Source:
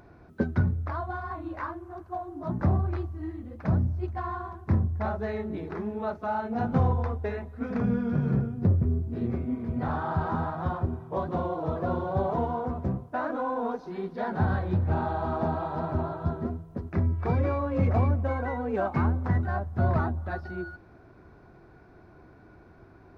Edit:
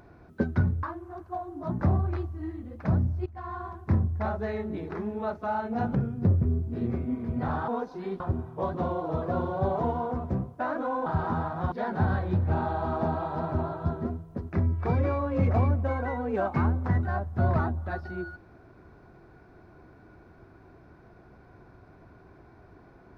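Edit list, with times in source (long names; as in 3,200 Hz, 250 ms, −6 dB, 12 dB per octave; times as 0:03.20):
0:00.83–0:01.63: remove
0:04.06–0:04.47: fade in, from −15 dB
0:06.75–0:08.35: remove
0:10.08–0:10.74: swap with 0:13.60–0:14.12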